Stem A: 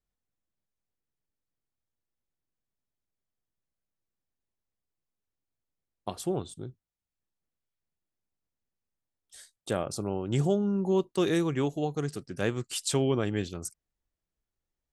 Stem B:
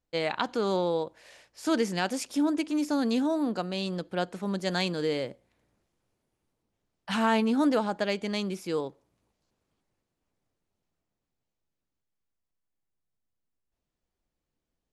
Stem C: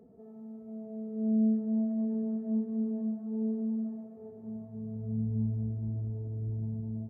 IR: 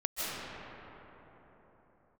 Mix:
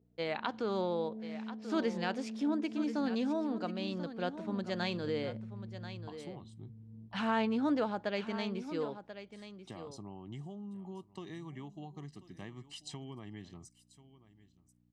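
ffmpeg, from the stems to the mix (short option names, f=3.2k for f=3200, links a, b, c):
-filter_complex "[0:a]bandreject=f=1.4k:w=5.1,aecho=1:1:1:0.73,aeval=exprs='val(0)+0.00251*(sin(2*PI*60*n/s)+sin(2*PI*2*60*n/s)/2+sin(2*PI*3*60*n/s)/3+sin(2*PI*4*60*n/s)/4+sin(2*PI*5*60*n/s)/5)':c=same,volume=-12dB,asplit=3[a][b][c];[b]volume=-23.5dB[d];[1:a]lowpass=4.3k,adelay=50,volume=-6.5dB,asplit=2[e][f];[f]volume=-12dB[g];[2:a]afwtdn=0.0178,volume=-4.5dB,asplit=2[h][i];[i]volume=-21.5dB[j];[c]apad=whole_len=317231[k];[h][k]sidechaincompress=threshold=-58dB:ratio=8:attack=16:release=704[l];[a][l]amix=inputs=2:normalize=0,highpass=110,lowpass=5.2k,acompressor=threshold=-42dB:ratio=6,volume=0dB[m];[d][g][j]amix=inputs=3:normalize=0,aecho=0:1:1037:1[n];[e][m][n]amix=inputs=3:normalize=0"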